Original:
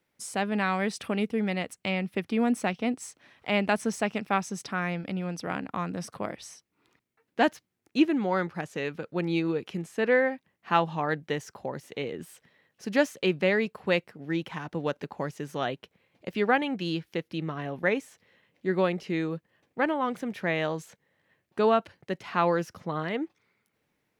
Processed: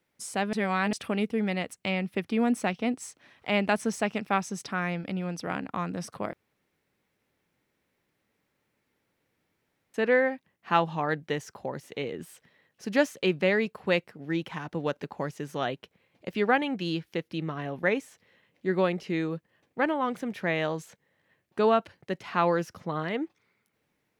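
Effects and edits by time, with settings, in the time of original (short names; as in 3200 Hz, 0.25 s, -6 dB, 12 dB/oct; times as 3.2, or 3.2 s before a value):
0.53–0.93 reverse
6.33–9.94 room tone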